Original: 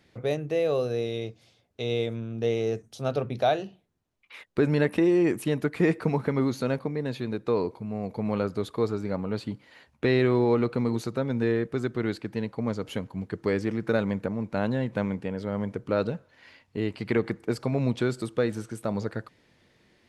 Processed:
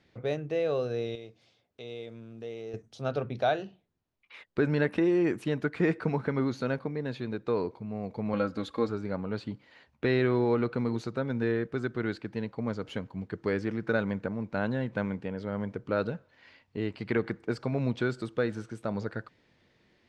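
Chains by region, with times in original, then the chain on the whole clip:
0:01.15–0:02.74: one scale factor per block 7 bits + low-shelf EQ 120 Hz −10 dB + downward compressor 1.5 to 1, threshold −48 dBFS
0:08.33–0:08.89: notch filter 900 Hz, Q 20 + comb filter 3.7 ms, depth 74% + one half of a high-frequency compander encoder only
whole clip: low-pass filter 5,700 Hz 12 dB per octave; dynamic equaliser 1,500 Hz, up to +6 dB, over −51 dBFS, Q 4.6; level −3.5 dB

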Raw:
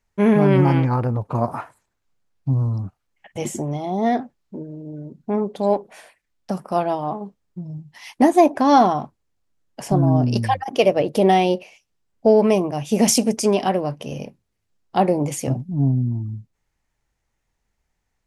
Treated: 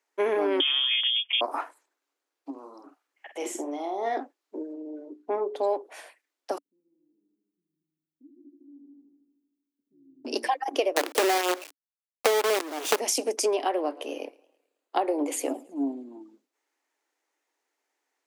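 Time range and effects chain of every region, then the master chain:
0:00.60–0:01.41: voice inversion scrambler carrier 3,400 Hz + low-shelf EQ 330 Hz −5 dB
0:02.50–0:04.17: parametric band 1,500 Hz +3.5 dB 1.5 octaves + downward compressor 1.5 to 1, threshold −37 dBFS + double-tracking delay 48 ms −7.5 dB
0:04.73–0:05.64: high-shelf EQ 4,300 Hz −8.5 dB + mains-hum notches 60/120/180/240/300/360/420 Hz
0:06.58–0:10.25: inverse Chebyshev band-stop filter 640–9,900 Hz, stop band 80 dB + echo machine with several playback heads 77 ms, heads all three, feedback 43%, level −7 dB
0:10.96–0:13.00: low-shelf EQ 110 Hz +10.5 dB + log-companded quantiser 2 bits
0:13.56–0:16.21: parametric band 5,600 Hz −10.5 dB 0.25 octaves + feedback echo with a swinging delay time 108 ms, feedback 48%, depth 148 cents, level −23.5 dB
whole clip: Chebyshev high-pass filter 280 Hz, order 6; downward compressor 6 to 1, threshold −22 dBFS

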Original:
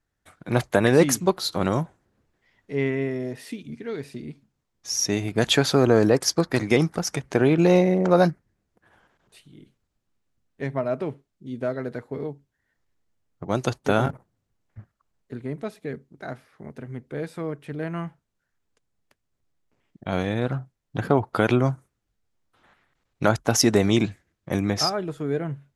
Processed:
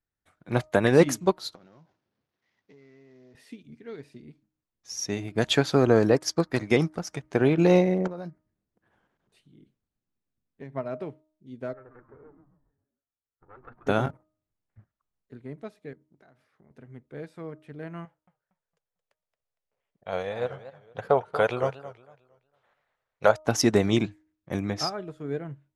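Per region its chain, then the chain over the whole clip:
0:01.55–0:03.35: variable-slope delta modulation 32 kbit/s + high-pass filter 110 Hz + downward compressor 20 to 1, threshold −38 dBFS
0:08.07–0:10.73: parametric band 220 Hz +5.5 dB 2.2 octaves + downward compressor 4 to 1, threshold −28 dBFS
0:11.73–0:13.87: lower of the sound and its delayed copy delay 2.3 ms + transistor ladder low-pass 1,700 Hz, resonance 55% + echo with shifted repeats 135 ms, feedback 42%, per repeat −140 Hz, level −7 dB
0:15.93–0:16.71: high-pass filter 49 Hz + downward compressor 10 to 1, threshold −42 dBFS
0:18.05–0:23.44: low shelf with overshoot 390 Hz −7.5 dB, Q 3 + feedback echo with a swinging delay time 228 ms, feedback 33%, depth 207 cents, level −10 dB
whole clip: high-shelf EQ 9,400 Hz −8.5 dB; hum removal 310.4 Hz, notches 4; expander for the loud parts 1.5 to 1, over −36 dBFS

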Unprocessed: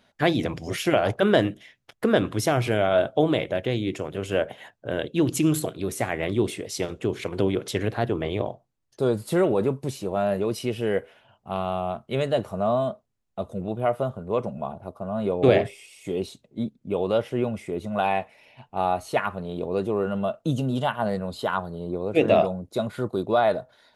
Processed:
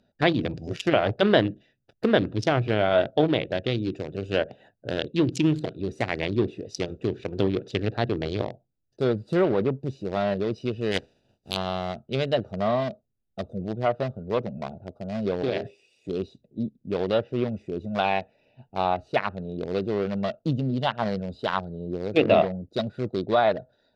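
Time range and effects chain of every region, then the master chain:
0:10.91–0:11.55: compressing power law on the bin magnitudes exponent 0.36 + parametric band 1,300 Hz −7.5 dB 1.2 octaves
0:15.42–0:16.09: high-pass filter 170 Hz 6 dB per octave + downward compressor 2 to 1, threshold −26 dBFS
whole clip: adaptive Wiener filter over 41 samples; treble cut that deepens with the level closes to 2,600 Hz, closed at −19 dBFS; parametric band 4,700 Hz +13.5 dB 1.4 octaves

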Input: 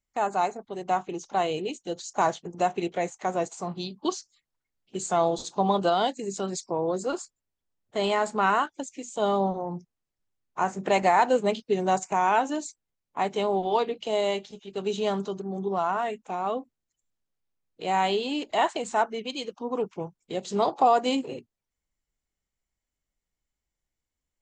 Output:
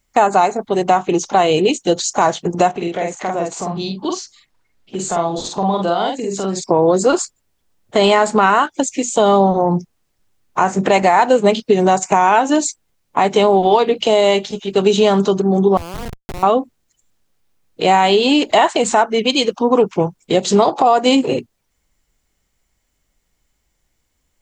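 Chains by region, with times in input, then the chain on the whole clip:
0:02.71–0:06.64: high-shelf EQ 6,200 Hz −8 dB + downward compressor 2 to 1, threshold −46 dBFS + double-tracking delay 47 ms −3 dB
0:15.77–0:16.43: downward compressor 10 to 1, threshold −40 dBFS + comparator with hysteresis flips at −39 dBFS
whole clip: downward compressor 6 to 1, threshold −27 dBFS; boost into a limiter +19.5 dB; level −1 dB

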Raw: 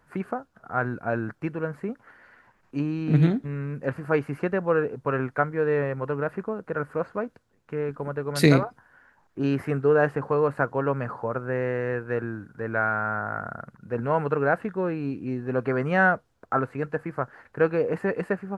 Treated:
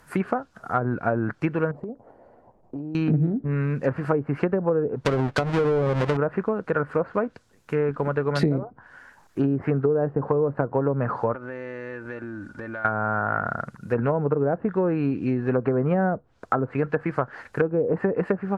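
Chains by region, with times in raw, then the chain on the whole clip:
0:01.71–0:02.95: drawn EQ curve 200 Hz 0 dB, 700 Hz +6 dB, 1,600 Hz −27 dB + downward compressor 12 to 1, threshold −36 dBFS
0:05.05–0:06.17: each half-wave held at its own peak + downward compressor 2.5 to 1, threshold −24 dBFS
0:11.33–0:12.85: high-frequency loss of the air 62 metres + comb filter 3.4 ms, depth 58% + downward compressor, threshold −39 dBFS
whole clip: treble cut that deepens with the level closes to 540 Hz, closed at −20.5 dBFS; high-shelf EQ 3,700 Hz +11 dB; downward compressor 10 to 1, threshold −25 dBFS; level +7 dB

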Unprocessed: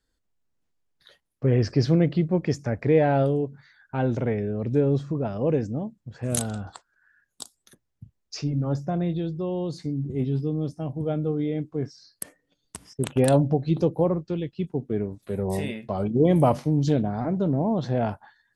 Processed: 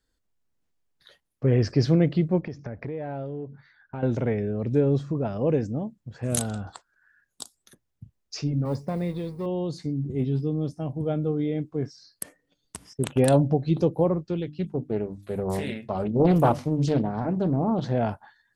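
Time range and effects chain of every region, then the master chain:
0:02.41–0:04.03: Butterworth low-pass 6,000 Hz 48 dB per octave + high-shelf EQ 3,300 Hz −9 dB + downward compressor, threshold −30 dBFS
0:08.65–0:09.46: mu-law and A-law mismatch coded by A + EQ curve with evenly spaced ripples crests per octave 0.92, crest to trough 9 dB
0:14.42–0:17.92: mains-hum notches 50/100/150/200/250/300 Hz + highs frequency-modulated by the lows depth 0.5 ms
whole clip: no processing

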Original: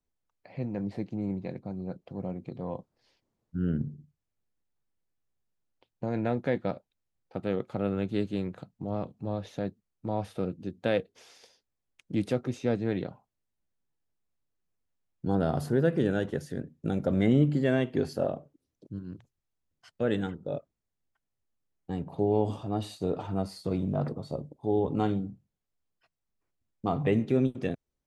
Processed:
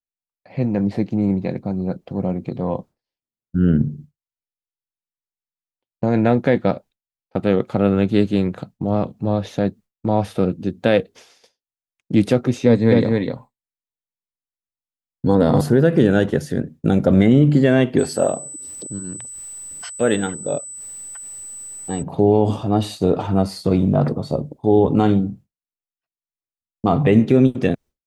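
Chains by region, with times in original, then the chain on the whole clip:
0:12.66–0:15.61: EQ curve with evenly spaced ripples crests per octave 1, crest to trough 9 dB + single-tap delay 252 ms −3.5 dB
0:17.98–0:22.01: low-shelf EQ 250 Hz −9.5 dB + upward compression, threshold −39 dBFS + steady tone 8,000 Hz −44 dBFS
whole clip: parametric band 220 Hz +2 dB 0.41 octaves; downward expander −47 dBFS; boost into a limiter +15.5 dB; level −3 dB

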